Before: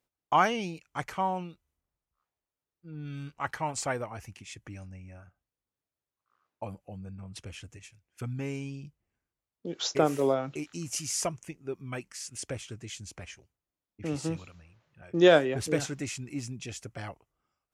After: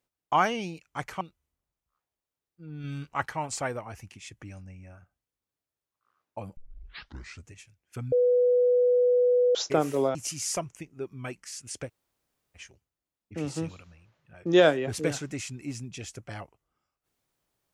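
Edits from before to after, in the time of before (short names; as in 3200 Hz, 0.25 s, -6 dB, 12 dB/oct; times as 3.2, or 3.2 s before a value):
1.21–1.46 cut
3.09–3.5 gain +3.5 dB
6.82 tape start 0.92 s
8.37–9.8 bleep 493 Hz -18.5 dBFS
10.4–10.83 cut
12.55–13.25 room tone, crossfade 0.06 s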